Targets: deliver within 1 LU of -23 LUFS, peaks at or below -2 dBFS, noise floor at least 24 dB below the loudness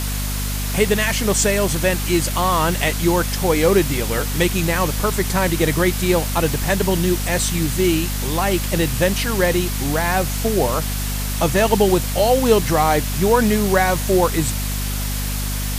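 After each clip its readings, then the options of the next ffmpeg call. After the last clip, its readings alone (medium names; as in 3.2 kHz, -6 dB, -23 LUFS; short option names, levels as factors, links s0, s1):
hum 50 Hz; highest harmonic 250 Hz; hum level -21 dBFS; noise floor -23 dBFS; noise floor target -43 dBFS; loudness -18.5 LUFS; peak level -1.5 dBFS; loudness target -23.0 LUFS
-> -af "bandreject=f=50:t=h:w=4,bandreject=f=100:t=h:w=4,bandreject=f=150:t=h:w=4,bandreject=f=200:t=h:w=4,bandreject=f=250:t=h:w=4"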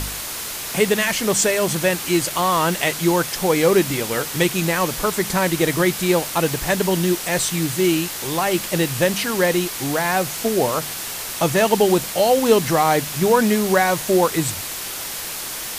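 hum not found; noise floor -29 dBFS; noise floor target -44 dBFS
-> -af "afftdn=nr=15:nf=-29"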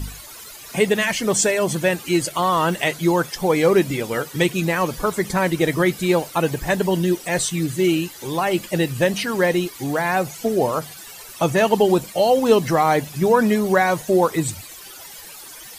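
noise floor -39 dBFS; noise floor target -44 dBFS
-> -af "afftdn=nr=6:nf=-39"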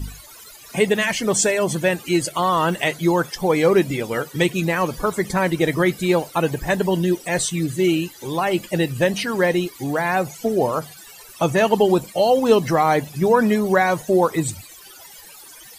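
noise floor -43 dBFS; noise floor target -44 dBFS
-> -af "afftdn=nr=6:nf=-43"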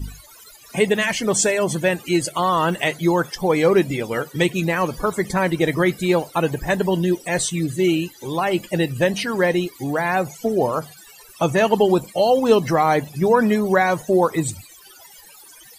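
noise floor -46 dBFS; loudness -20.0 LUFS; peak level -2.5 dBFS; loudness target -23.0 LUFS
-> -af "volume=0.708"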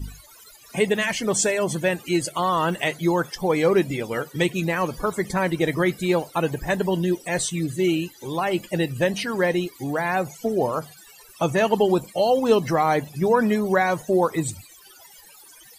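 loudness -23.0 LUFS; peak level -5.5 dBFS; noise floor -49 dBFS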